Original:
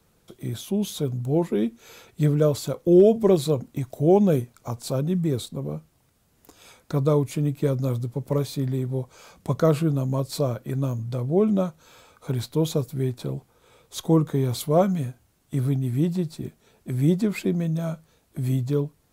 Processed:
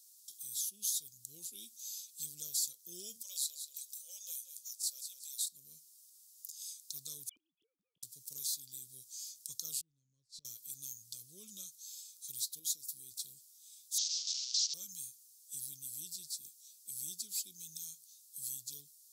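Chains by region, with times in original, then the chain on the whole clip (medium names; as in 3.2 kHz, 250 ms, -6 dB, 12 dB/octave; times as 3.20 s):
3.22–5.41 s: rippled Chebyshev high-pass 500 Hz, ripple 3 dB + feedback delay 183 ms, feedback 27%, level -11.5 dB
7.29–8.03 s: formants replaced by sine waves + inverted gate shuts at -23 dBFS, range -24 dB
9.81–10.45 s: low-pass 6.5 kHz + tilt EQ -4 dB/octave + inverted gate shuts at -17 dBFS, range -26 dB
12.59–13.12 s: high-pass 58 Hz + compression 4:1, threshold -26 dBFS + peaking EQ 310 Hz +9.5 dB 0.46 oct
13.98–14.74 s: one-bit delta coder 32 kbps, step -20 dBFS + brick-wall FIR high-pass 910 Hz
whole clip: inverse Chebyshev high-pass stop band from 2 kHz, stop band 50 dB; compression 1.5:1, threshold -55 dBFS; trim +11 dB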